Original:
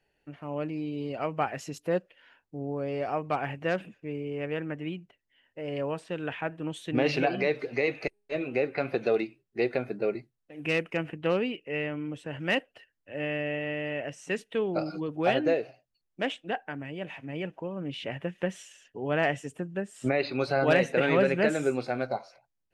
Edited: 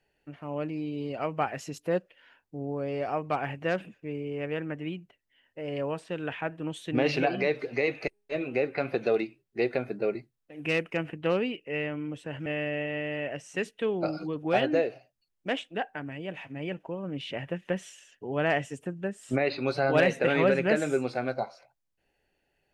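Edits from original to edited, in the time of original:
12.46–13.19 cut

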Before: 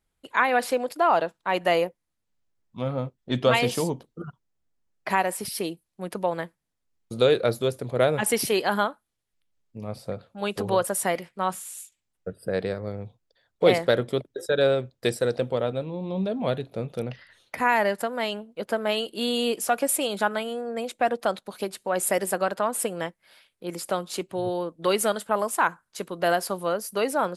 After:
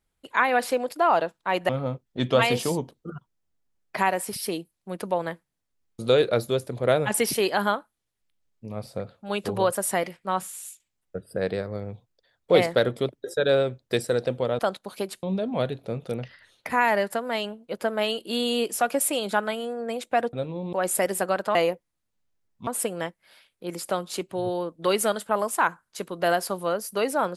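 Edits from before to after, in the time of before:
1.69–2.81 move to 22.67
15.71–16.11 swap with 21.21–21.85

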